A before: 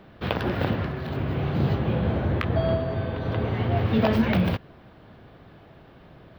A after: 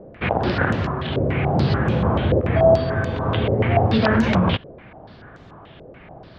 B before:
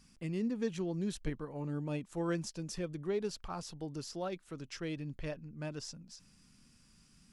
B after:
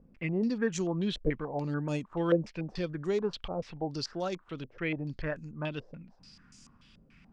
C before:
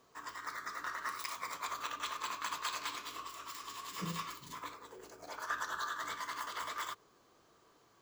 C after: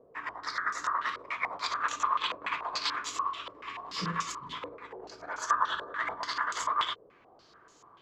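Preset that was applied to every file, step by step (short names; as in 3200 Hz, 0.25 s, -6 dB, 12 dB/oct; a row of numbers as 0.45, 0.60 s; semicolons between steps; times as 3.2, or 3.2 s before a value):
maximiser +13 dB; stepped low-pass 6.9 Hz 530–6800 Hz; gain -8.5 dB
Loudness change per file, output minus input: +5.5, +5.5, +8.0 LU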